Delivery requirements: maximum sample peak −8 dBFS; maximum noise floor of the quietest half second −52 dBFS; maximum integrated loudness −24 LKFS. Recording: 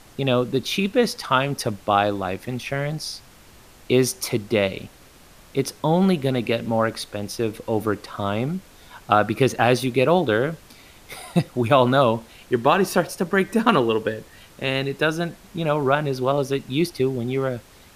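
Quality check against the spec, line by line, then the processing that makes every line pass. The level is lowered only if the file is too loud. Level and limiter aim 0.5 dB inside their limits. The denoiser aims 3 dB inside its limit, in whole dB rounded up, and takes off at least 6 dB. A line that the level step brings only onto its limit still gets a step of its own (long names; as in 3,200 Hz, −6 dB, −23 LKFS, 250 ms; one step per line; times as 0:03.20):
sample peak −3.0 dBFS: out of spec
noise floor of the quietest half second −49 dBFS: out of spec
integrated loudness −22.5 LKFS: out of spec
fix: broadband denoise 6 dB, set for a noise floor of −49 dBFS
level −2 dB
brickwall limiter −8.5 dBFS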